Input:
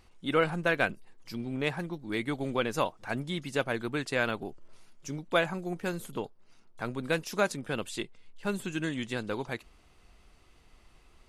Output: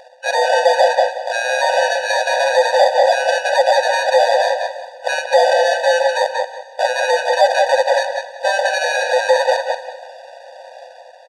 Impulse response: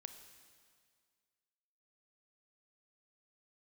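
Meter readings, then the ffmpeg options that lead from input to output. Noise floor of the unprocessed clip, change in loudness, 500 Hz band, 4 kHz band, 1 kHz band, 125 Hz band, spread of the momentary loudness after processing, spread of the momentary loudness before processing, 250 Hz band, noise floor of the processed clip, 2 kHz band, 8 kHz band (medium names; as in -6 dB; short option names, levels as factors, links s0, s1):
-61 dBFS, +16.5 dB, +19.0 dB, +17.0 dB, +21.5 dB, under -30 dB, 9 LU, 12 LU, under -20 dB, -40 dBFS, +15.0 dB, +17.5 dB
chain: -filter_complex "[0:a]equalizer=f=3800:w=0.64:g=-7,dynaudnorm=f=100:g=9:m=1.78,acrusher=samples=32:mix=1:aa=0.000001,asoftclip=type=tanh:threshold=0.0422,highpass=390,equalizer=f=510:t=q:w=4:g=10,equalizer=f=740:t=q:w=4:g=5,equalizer=f=1400:t=q:w=4:g=8,equalizer=f=4900:t=q:w=4:g=5,equalizer=f=7300:t=q:w=4:g=-6,lowpass=f=8100:w=0.5412,lowpass=f=8100:w=1.3066,asplit=2[s0][s1];[s1]adelay=182,lowpass=f=4800:p=1,volume=0.398,asplit=2[s2][s3];[s3]adelay=182,lowpass=f=4800:p=1,volume=0.23,asplit=2[s4][s5];[s5]adelay=182,lowpass=f=4800:p=1,volume=0.23[s6];[s0][s2][s4][s6]amix=inputs=4:normalize=0,asplit=2[s7][s8];[1:a]atrim=start_sample=2205[s9];[s8][s9]afir=irnorm=-1:irlink=0,volume=1.06[s10];[s7][s10]amix=inputs=2:normalize=0,alimiter=level_in=11.2:limit=0.891:release=50:level=0:latency=1,afftfilt=real='re*eq(mod(floor(b*sr/1024/490),2),1)':imag='im*eq(mod(floor(b*sr/1024/490),2),1)':win_size=1024:overlap=0.75"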